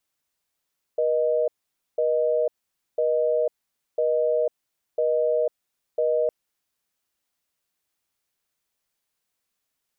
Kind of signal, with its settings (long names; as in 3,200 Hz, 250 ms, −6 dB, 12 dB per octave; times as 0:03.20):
call progress tone busy tone, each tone −22 dBFS 5.31 s